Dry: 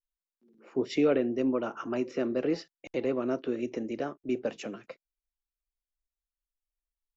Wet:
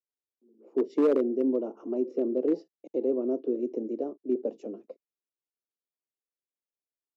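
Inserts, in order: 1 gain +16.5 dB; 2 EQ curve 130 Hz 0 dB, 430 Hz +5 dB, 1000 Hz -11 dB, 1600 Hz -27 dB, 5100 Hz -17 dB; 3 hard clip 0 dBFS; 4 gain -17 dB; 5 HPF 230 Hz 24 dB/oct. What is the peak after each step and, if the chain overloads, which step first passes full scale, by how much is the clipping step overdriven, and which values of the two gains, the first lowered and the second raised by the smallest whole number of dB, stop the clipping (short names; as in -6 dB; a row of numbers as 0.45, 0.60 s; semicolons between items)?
+2.0, +5.0, 0.0, -17.0, -14.5 dBFS; step 1, 5.0 dB; step 1 +11.5 dB, step 4 -12 dB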